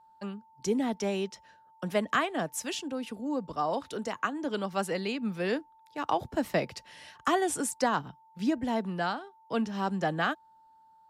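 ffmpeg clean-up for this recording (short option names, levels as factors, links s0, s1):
-af "bandreject=f=890:w=30"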